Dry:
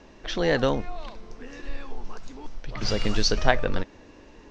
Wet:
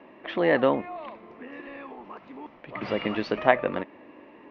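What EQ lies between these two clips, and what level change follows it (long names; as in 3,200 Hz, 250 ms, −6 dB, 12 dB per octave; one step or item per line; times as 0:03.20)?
loudspeaker in its box 300–2,300 Hz, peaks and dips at 450 Hz −7 dB, 790 Hz −4 dB, 1,500 Hz −10 dB
+6.0 dB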